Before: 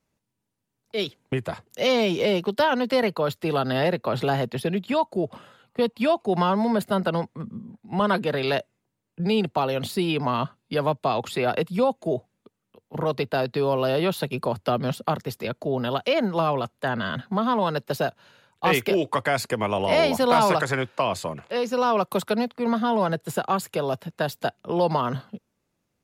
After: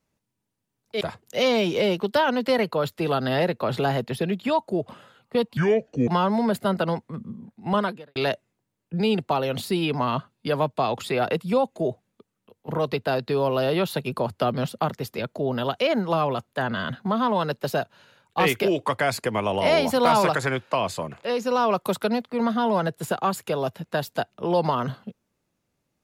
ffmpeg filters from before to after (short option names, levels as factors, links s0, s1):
-filter_complex "[0:a]asplit=5[s0][s1][s2][s3][s4];[s0]atrim=end=1.012[s5];[s1]atrim=start=1.448:end=6.014[s6];[s2]atrim=start=6.01:end=6.34,asetpts=PTS-STARTPTS,asetrate=28665,aresample=44100,atrim=end_sample=22389,asetpts=PTS-STARTPTS[s7];[s3]atrim=start=6.336:end=8.42,asetpts=PTS-STARTPTS,afade=t=out:st=1.704:d=0.38:c=qua[s8];[s4]atrim=start=8.42,asetpts=PTS-STARTPTS,afade=t=in:d=0.004:c=hsin[s9];[s5][s6]acrossfade=d=0.004:c1=hsin:c2=hsin[s10];[s10][s7]acrossfade=d=0.004:c1=hsin:c2=hsin[s11];[s8][s9]concat=n=2:v=0:a=1[s12];[s11][s12]acrossfade=d=0.004:c1=hsin:c2=hsin"